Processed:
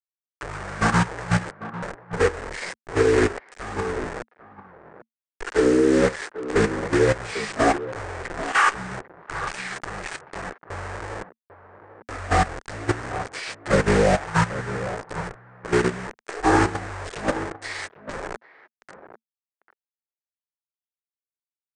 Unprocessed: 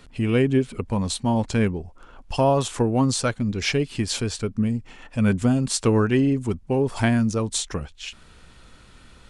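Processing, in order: inharmonic rescaling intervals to 108%; dynamic EQ 920 Hz, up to +5 dB, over -37 dBFS, Q 0.83; bit-crush 5-bit; graphic EQ 125/250/500/1000/2000/4000/8000 Hz -12/-5/-6/+8/+4/+11/-5 dB; level quantiser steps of 11 dB; notch 530 Hz, Q 12; speakerphone echo 0.34 s, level -7 dB; speed mistake 78 rpm record played at 33 rpm; upward expander 1.5:1, over -44 dBFS; gain +6 dB

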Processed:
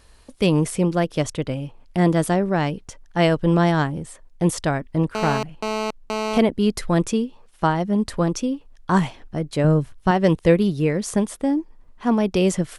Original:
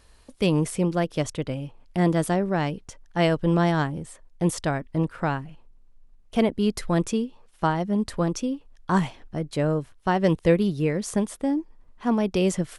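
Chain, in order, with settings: 5.15–6.38 GSM buzz -28 dBFS; 9.64–10.11 tone controls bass +7 dB, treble +1 dB; gain +3.5 dB

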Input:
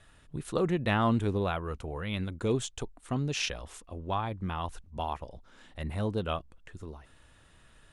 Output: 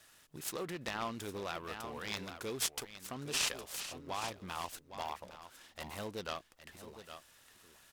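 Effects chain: 2.48–4.65 reverse delay 0.575 s, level -13.5 dB; echo 0.811 s -13 dB; limiter -23.5 dBFS, peak gain reduction 9 dB; RIAA curve recording; noise-modulated delay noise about 1400 Hz, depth 0.036 ms; gain -4.5 dB

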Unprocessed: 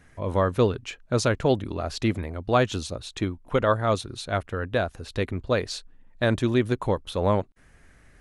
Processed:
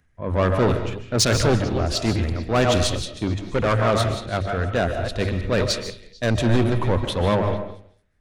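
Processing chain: reverse delay 0.164 s, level -10 dB; RIAA curve playback; notches 50/100 Hz; gate -27 dBFS, range -27 dB; tilt +3 dB/oct; upward compressor, threshold -33 dBFS; transient shaper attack -2 dB, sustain +3 dB; soft clip -23.5 dBFS, distortion -8 dB; on a send: delay with a stepping band-pass 0.223 s, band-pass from 2700 Hz, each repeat 0.7 oct, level -11 dB; on the sum: digital reverb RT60 0.61 s, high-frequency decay 0.4×, pre-delay 0.11 s, DRR 6 dB; three-band expander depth 70%; gain +7.5 dB

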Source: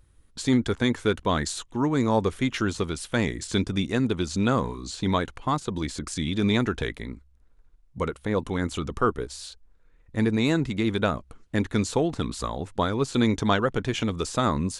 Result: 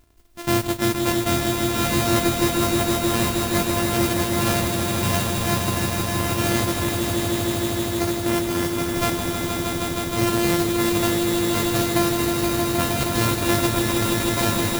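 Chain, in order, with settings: sample sorter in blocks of 128 samples; modulation noise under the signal 11 dB; swelling echo 0.157 s, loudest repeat 5, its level -5.5 dB

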